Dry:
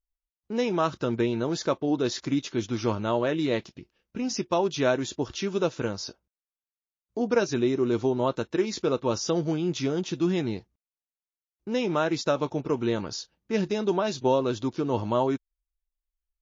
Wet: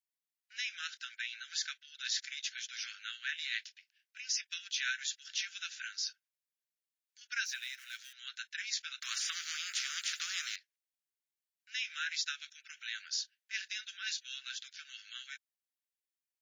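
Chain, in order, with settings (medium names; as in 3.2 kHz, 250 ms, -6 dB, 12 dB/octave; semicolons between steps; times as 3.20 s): 7.45–8.13 s: companding laws mixed up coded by A; steep high-pass 1.5 kHz 96 dB/octave; 9.02–10.56 s: spectrum-flattening compressor 4:1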